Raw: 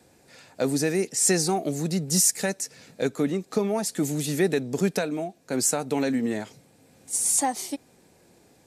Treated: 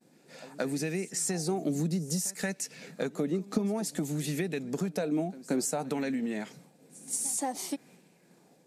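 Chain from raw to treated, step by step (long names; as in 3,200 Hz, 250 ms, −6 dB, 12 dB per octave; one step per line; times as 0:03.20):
downward expander −52 dBFS
low shelf with overshoot 120 Hz −10.5 dB, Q 3
downward compressor, threshold −28 dBFS, peak gain reduction 13 dB
echo ahead of the sound 179 ms −19.5 dB
auto-filter bell 0.56 Hz 240–2,700 Hz +7 dB
level −1.5 dB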